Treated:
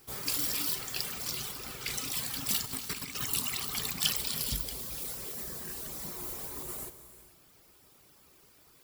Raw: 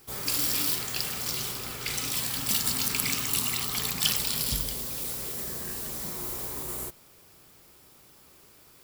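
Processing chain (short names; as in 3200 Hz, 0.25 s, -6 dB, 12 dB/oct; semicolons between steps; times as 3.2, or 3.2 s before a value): reverb removal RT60 0.85 s; 2.64–3.25 negative-ratio compressor -35 dBFS, ratio -0.5; non-linear reverb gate 0.48 s flat, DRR 10.5 dB; gain -3 dB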